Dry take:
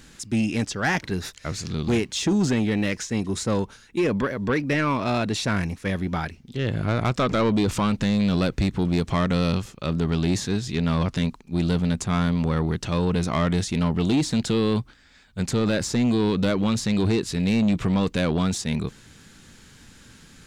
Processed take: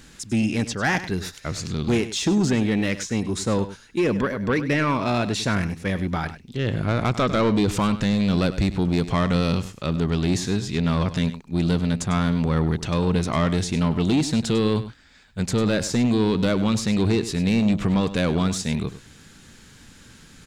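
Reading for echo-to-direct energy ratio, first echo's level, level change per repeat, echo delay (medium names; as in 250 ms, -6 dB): -13.5 dB, -13.5 dB, no regular repeats, 100 ms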